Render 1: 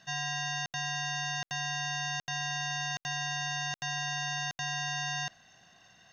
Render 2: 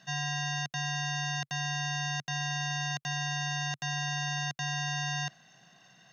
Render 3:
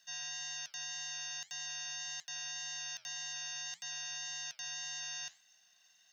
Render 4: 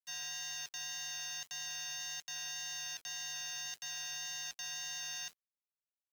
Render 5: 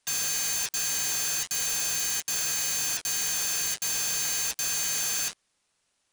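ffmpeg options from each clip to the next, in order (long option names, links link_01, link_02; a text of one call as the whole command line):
ffmpeg -i in.wav -af "lowshelf=frequency=110:width_type=q:width=3:gain=-8.5" out.wav
ffmpeg -i in.wav -af "aderivative,flanger=delay=5.8:depth=6.8:regen=-81:speed=1.8:shape=triangular,volume=4dB" out.wav
ffmpeg -i in.wav -af "acrusher=bits=8:mix=0:aa=0.000001" out.wav
ffmpeg -i in.wav -af "aresample=22050,aresample=44100,aeval=exprs='0.0282*sin(PI/2*5.62*val(0)/0.0282)':channel_layout=same,volume=5.5dB" out.wav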